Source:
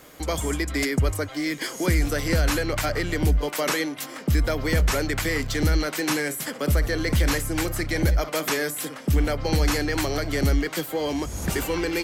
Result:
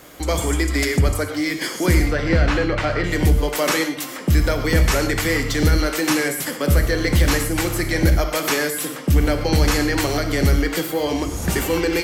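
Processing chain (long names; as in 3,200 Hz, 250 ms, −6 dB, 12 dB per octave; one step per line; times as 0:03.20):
0:02.02–0:03.04: low-pass filter 3,300 Hz 12 dB per octave
convolution reverb, pre-delay 3 ms, DRR 6 dB
level +4 dB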